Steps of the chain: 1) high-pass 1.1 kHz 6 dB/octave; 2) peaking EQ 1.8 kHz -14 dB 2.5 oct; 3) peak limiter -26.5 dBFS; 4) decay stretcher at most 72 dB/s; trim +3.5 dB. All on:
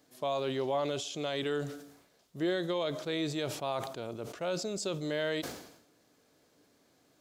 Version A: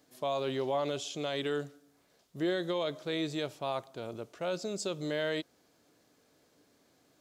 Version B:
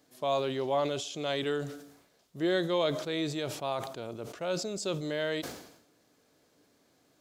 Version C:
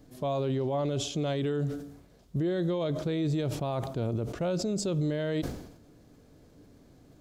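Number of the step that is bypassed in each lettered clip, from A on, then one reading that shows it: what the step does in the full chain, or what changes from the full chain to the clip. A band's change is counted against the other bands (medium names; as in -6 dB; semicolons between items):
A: 4, 8 kHz band -2.0 dB; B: 3, crest factor change +4.0 dB; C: 1, 125 Hz band +11.5 dB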